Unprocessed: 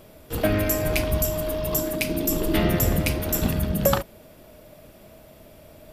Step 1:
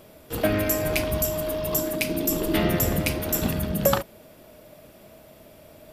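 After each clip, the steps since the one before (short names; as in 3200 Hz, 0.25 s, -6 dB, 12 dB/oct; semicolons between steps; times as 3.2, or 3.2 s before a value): low shelf 78 Hz -9 dB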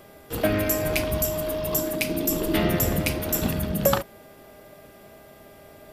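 buzz 400 Hz, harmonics 5, -55 dBFS -3 dB/oct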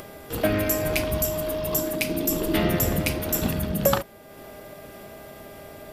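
upward compressor, threshold -34 dBFS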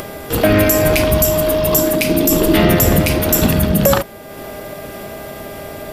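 maximiser +13.5 dB; gain -1 dB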